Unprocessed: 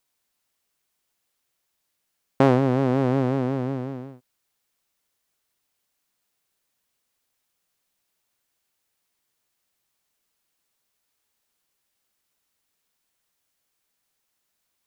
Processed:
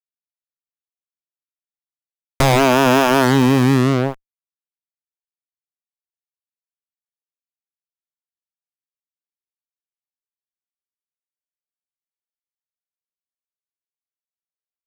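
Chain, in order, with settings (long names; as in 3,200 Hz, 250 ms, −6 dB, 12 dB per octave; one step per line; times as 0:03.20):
harmonic generator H 2 −19 dB, 3 −12 dB, 4 −18 dB, 7 −16 dB, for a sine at −2.5 dBFS
fuzz pedal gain 37 dB, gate −38 dBFS
level +4.5 dB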